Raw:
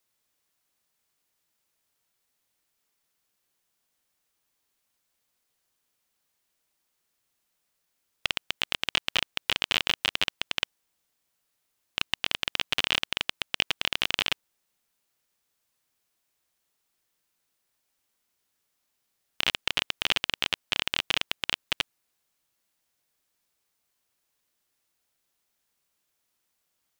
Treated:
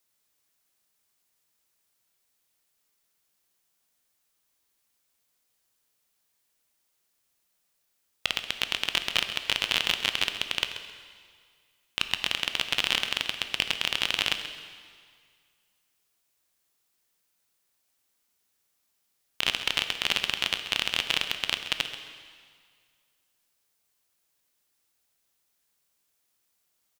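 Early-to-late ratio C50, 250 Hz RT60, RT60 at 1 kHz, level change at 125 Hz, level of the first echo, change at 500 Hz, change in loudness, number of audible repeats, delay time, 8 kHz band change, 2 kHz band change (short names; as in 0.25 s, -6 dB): 7.5 dB, 1.9 s, 2.0 s, -0.5 dB, -12.5 dB, 0.0 dB, +1.0 dB, 2, 0.133 s, +2.5 dB, +0.5 dB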